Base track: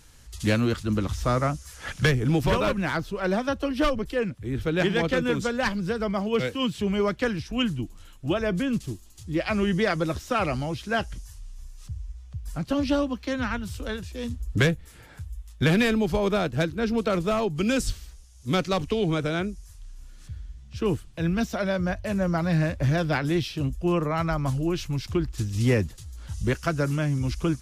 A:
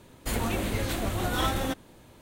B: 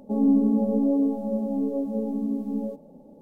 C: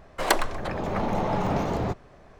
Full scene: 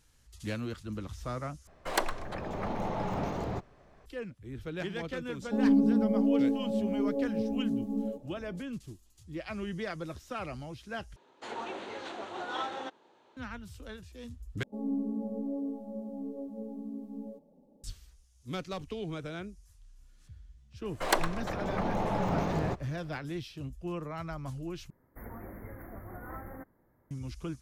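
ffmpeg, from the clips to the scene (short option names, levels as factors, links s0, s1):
-filter_complex "[3:a]asplit=2[s0][s1];[2:a]asplit=2[s2][s3];[1:a]asplit=2[s4][s5];[0:a]volume=0.224[s6];[s4]highpass=390,equalizer=f=390:t=q:w=4:g=6,equalizer=f=870:t=q:w=4:g=8,equalizer=f=1400:t=q:w=4:g=3,equalizer=f=2200:t=q:w=4:g=-3,equalizer=f=5100:t=q:w=4:g=-5,lowpass=f=5700:w=0.5412,lowpass=f=5700:w=1.3066[s7];[s5]asuperstop=centerf=5200:order=20:qfactor=0.57[s8];[s6]asplit=5[s9][s10][s11][s12][s13];[s9]atrim=end=1.674[s14];[s0]atrim=end=2.39,asetpts=PTS-STARTPTS,volume=0.422[s15];[s10]atrim=start=4.056:end=11.164[s16];[s7]atrim=end=2.21,asetpts=PTS-STARTPTS,volume=0.376[s17];[s11]atrim=start=13.366:end=14.634[s18];[s3]atrim=end=3.21,asetpts=PTS-STARTPTS,volume=0.224[s19];[s12]atrim=start=17.836:end=24.904[s20];[s8]atrim=end=2.21,asetpts=PTS-STARTPTS,volume=0.168[s21];[s13]atrim=start=27.106[s22];[s2]atrim=end=3.21,asetpts=PTS-STARTPTS,volume=0.631,afade=t=in:d=0.004:c=hsin,afade=t=out:st=3.206:d=0.004:c=hsin,adelay=5420[s23];[s1]atrim=end=2.39,asetpts=PTS-STARTPTS,volume=0.562,afade=t=in:d=0.004:c=hsin,afade=t=out:st=2.386:d=0.004:c=hsin,adelay=20820[s24];[s14][s15]acrossfade=d=0.004:c1=hsin:c2=hsin[s25];[s25][s16]acrossfade=d=0.004:c1=hsin:c2=hsin[s26];[s26][s17]acrossfade=d=0.004:c1=hsin:c2=hsin[s27];[s27][s18]acrossfade=d=0.004:c1=hsin:c2=hsin[s28];[s28][s19]acrossfade=d=0.004:c1=hsin:c2=hsin[s29];[s29][s20]acrossfade=d=0.004:c1=hsin:c2=hsin[s30];[s30][s21]acrossfade=d=0.004:c1=hsin:c2=hsin[s31];[s31][s22]acrossfade=d=0.004:c1=hsin:c2=hsin[s32];[s32][s23][s24]amix=inputs=3:normalize=0"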